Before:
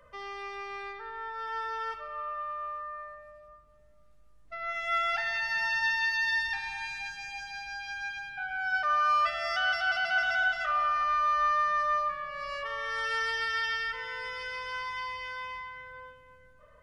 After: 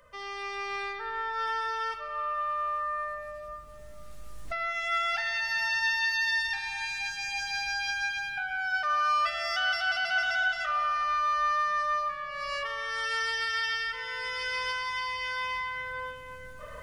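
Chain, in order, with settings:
camcorder AGC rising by 7.8 dB per second
high-shelf EQ 2,900 Hz +8.5 dB
level −2 dB

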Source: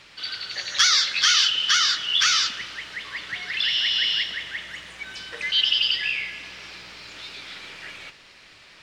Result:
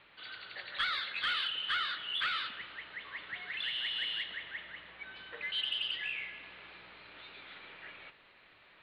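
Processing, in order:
Butterworth low-pass 4,200 Hz 72 dB per octave
mid-hump overdrive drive 7 dB, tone 1,100 Hz, clips at −7.5 dBFS
level −7.5 dB

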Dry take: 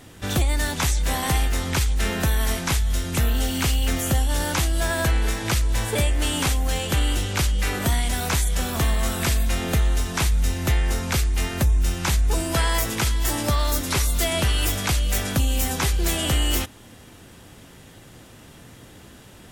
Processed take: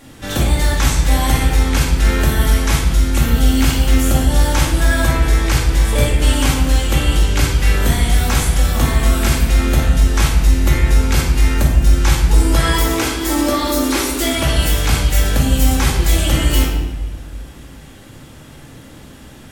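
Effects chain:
0:12.61–0:14.33: low shelf with overshoot 210 Hz −12 dB, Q 3
rectangular room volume 910 cubic metres, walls mixed, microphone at 2.3 metres
level +1 dB

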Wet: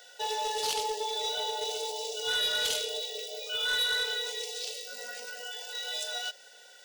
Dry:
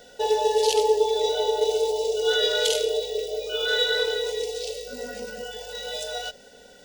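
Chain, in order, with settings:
high-pass filter 1,000 Hz 12 dB per octave
soft clipping −24 dBFS, distortion −12 dB

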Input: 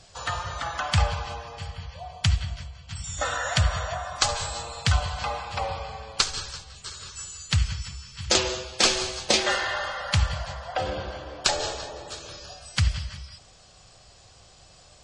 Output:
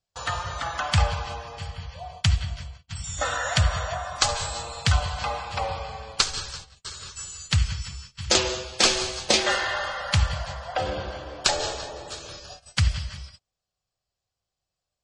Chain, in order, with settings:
noise gate −42 dBFS, range −34 dB
level +1 dB

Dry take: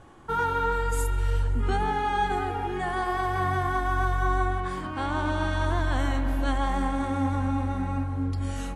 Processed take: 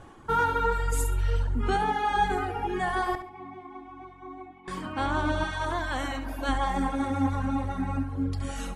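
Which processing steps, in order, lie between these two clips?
reverb reduction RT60 1.2 s
0:03.15–0:04.68: formant filter u
0:05.44–0:06.49: low-shelf EQ 280 Hz −9 dB
flutter between parallel walls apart 11.9 metres, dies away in 0.37 s
level +2.5 dB

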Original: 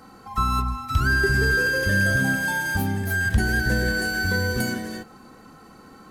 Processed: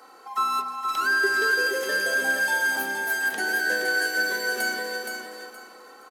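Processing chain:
high-pass filter 390 Hz 24 dB per octave
repeating echo 470 ms, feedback 25%, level −5.5 dB

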